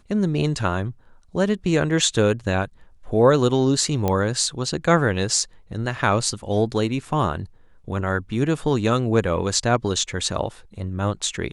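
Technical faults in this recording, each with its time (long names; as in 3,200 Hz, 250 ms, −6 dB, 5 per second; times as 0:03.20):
0:04.08: click −9 dBFS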